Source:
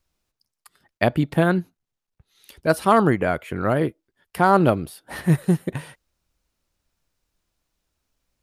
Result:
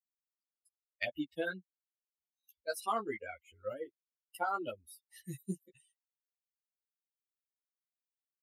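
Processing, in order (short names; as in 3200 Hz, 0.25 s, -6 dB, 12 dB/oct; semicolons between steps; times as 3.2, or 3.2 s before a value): per-bin expansion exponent 3; HPF 1000 Hz 6 dB/oct; notch 1700 Hz, Q 9.3; compressor 4:1, threshold -30 dBFS, peak gain reduction 10.5 dB; ensemble effect; gain +1.5 dB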